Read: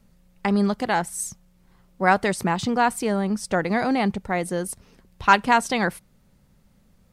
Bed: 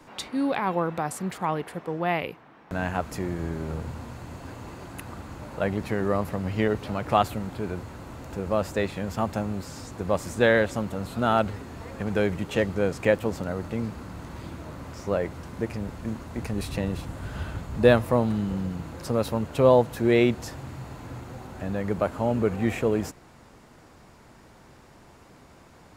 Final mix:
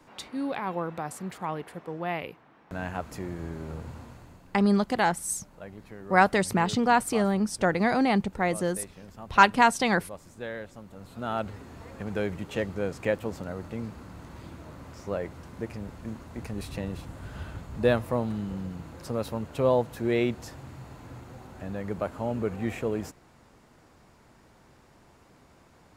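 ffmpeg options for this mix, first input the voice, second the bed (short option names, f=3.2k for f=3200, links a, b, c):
-filter_complex "[0:a]adelay=4100,volume=-1.5dB[a];[1:a]volume=6dB,afade=t=out:st=3.97:d=0.5:silence=0.266073,afade=t=in:st=10.85:d=0.81:silence=0.266073[b];[a][b]amix=inputs=2:normalize=0"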